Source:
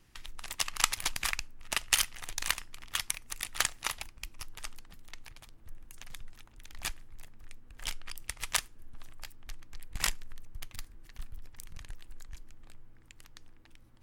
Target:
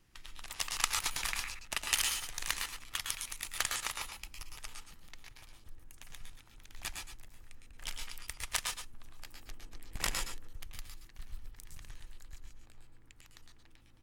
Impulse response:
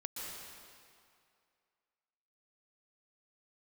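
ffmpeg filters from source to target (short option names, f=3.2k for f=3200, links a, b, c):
-filter_complex "[0:a]asettb=1/sr,asplit=3[a][b][c];[a]atrim=end=9.254[d];[b]atrim=start=9.25:end=10.48,asetpts=PTS-STARTPTS,afade=t=in:d=0.004:c=qsin,afade=t=out:st=1.226:d=0.004:c=qsin,equalizer=f=400:t=o:w=1.9:g=8[e];[c]atrim=start=10.476[f];[d][e]acrossfade=d=0.004:c1=hsin:c2=qsin[g];[g][f]acrossfade=d=0.004:c1=qsin:c2=hsin,aecho=1:1:107:0.447[h];[1:a]atrim=start_sample=2205,atrim=end_sample=6615[i];[h][i]afir=irnorm=-1:irlink=0"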